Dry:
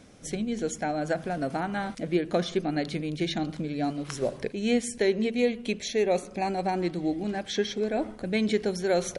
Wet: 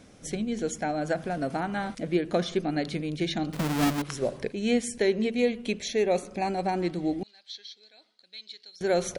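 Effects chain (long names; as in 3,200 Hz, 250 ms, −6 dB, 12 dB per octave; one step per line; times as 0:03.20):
0:03.53–0:04.02: each half-wave held at its own peak
0:07.23–0:08.81: resonant band-pass 4,200 Hz, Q 6.2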